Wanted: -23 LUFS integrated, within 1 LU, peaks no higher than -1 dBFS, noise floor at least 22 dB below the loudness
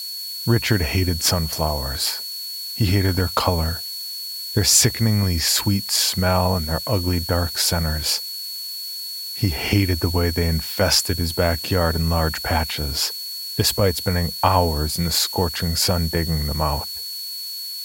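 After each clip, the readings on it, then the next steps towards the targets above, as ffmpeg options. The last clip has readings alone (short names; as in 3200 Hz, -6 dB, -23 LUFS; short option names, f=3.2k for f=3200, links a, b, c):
steady tone 4400 Hz; tone level -29 dBFS; noise floor -31 dBFS; noise floor target -43 dBFS; loudness -20.5 LUFS; peak -2.0 dBFS; loudness target -23.0 LUFS
-> -af "bandreject=f=4.4k:w=30"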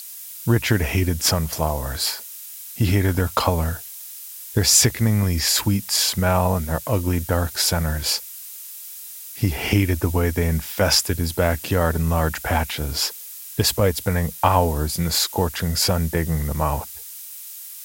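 steady tone none; noise floor -37 dBFS; noise floor target -43 dBFS
-> -af "afftdn=nr=6:nf=-37"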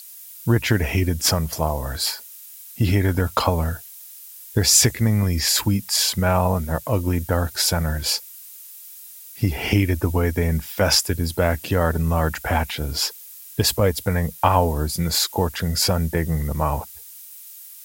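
noise floor -42 dBFS; noise floor target -43 dBFS
-> -af "afftdn=nr=6:nf=-42"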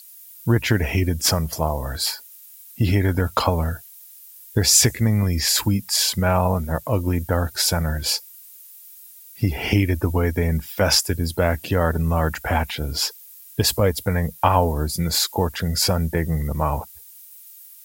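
noise floor -45 dBFS; loudness -21.0 LUFS; peak -2.0 dBFS; loudness target -23.0 LUFS
-> -af "volume=-2dB"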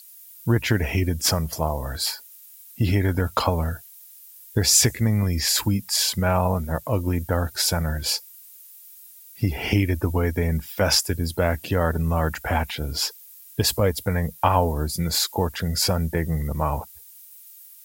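loudness -23.0 LUFS; peak -4.0 dBFS; noise floor -47 dBFS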